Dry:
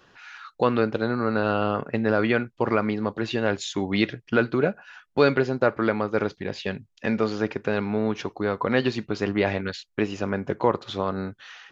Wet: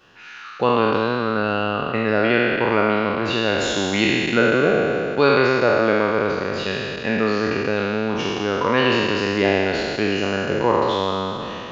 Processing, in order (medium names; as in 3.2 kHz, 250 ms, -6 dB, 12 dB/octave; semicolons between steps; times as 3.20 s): spectral sustain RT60 2.90 s; peaking EQ 2.8 kHz +6 dB 0.27 oct